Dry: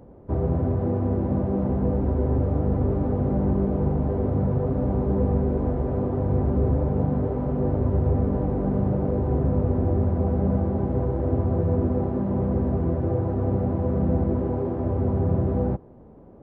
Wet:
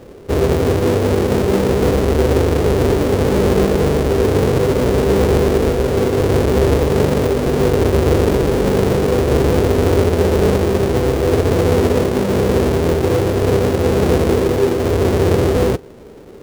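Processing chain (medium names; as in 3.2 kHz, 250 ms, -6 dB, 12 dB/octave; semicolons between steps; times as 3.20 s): square wave that keeps the level; peaking EQ 430 Hz +14.5 dB 0.82 oct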